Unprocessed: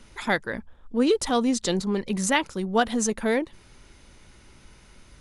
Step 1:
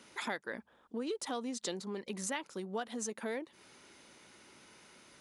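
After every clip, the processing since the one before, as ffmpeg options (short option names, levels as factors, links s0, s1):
-af "acompressor=threshold=0.0251:ratio=6,highpass=250,volume=0.75"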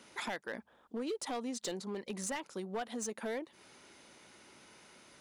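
-af "equalizer=f=690:t=o:w=0.65:g=2.5,volume=39.8,asoftclip=hard,volume=0.0251"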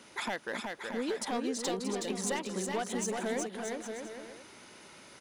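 -af "aecho=1:1:370|629|810.3|937.2|1026:0.631|0.398|0.251|0.158|0.1,volume=1.5"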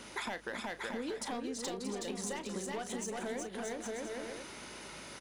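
-filter_complex "[0:a]acompressor=threshold=0.00794:ratio=6,aeval=exprs='val(0)+0.000398*(sin(2*PI*50*n/s)+sin(2*PI*2*50*n/s)/2+sin(2*PI*3*50*n/s)/3+sin(2*PI*4*50*n/s)/4+sin(2*PI*5*50*n/s)/5)':c=same,asplit=2[s0][s1];[s1]adelay=34,volume=0.251[s2];[s0][s2]amix=inputs=2:normalize=0,volume=1.78"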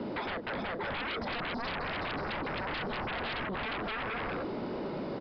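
-filter_complex "[0:a]acrossover=split=120|730|2000[s0][s1][s2][s3];[s1]aeval=exprs='0.0355*sin(PI/2*10*val(0)/0.0355)':c=same[s4];[s0][s4][s2][s3]amix=inputs=4:normalize=0,aresample=11025,aresample=44100,volume=0.668"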